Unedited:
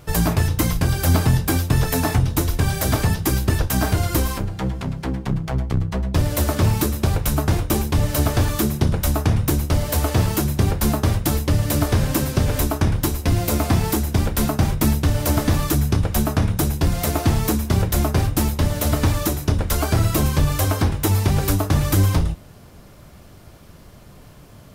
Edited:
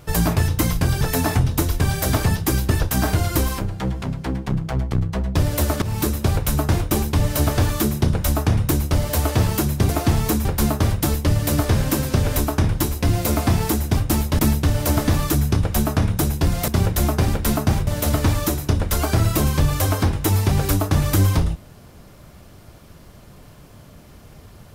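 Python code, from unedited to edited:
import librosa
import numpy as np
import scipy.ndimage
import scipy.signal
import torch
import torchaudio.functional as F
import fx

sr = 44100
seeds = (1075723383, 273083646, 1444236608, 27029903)

y = fx.edit(x, sr, fx.cut(start_s=1.01, length_s=0.79),
    fx.fade_in_from(start_s=6.61, length_s=0.25, floor_db=-14.5),
    fx.swap(start_s=14.2, length_s=0.59, other_s=18.24, other_length_s=0.42),
    fx.move(start_s=17.08, length_s=0.56, to_s=10.68), tone=tone)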